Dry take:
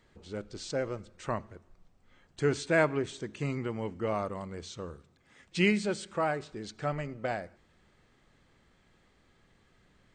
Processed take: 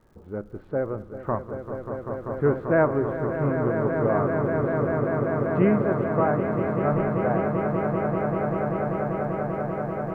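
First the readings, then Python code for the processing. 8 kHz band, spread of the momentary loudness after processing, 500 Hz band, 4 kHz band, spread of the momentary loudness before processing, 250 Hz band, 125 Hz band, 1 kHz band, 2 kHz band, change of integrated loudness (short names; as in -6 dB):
under -20 dB, 11 LU, +10.5 dB, under -15 dB, 15 LU, +10.0 dB, +11.5 dB, +10.0 dB, +2.5 dB, +8.0 dB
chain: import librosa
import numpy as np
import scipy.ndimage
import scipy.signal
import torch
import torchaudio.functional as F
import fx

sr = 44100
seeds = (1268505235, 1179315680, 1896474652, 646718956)

y = scipy.signal.sosfilt(scipy.signal.butter(4, 1400.0, 'lowpass', fs=sr, output='sos'), x)
y = fx.dmg_crackle(y, sr, seeds[0], per_s=170.0, level_db=-62.0)
y = fx.echo_swell(y, sr, ms=195, loudest=8, wet_db=-8.5)
y = F.gain(torch.from_numpy(y), 6.0).numpy()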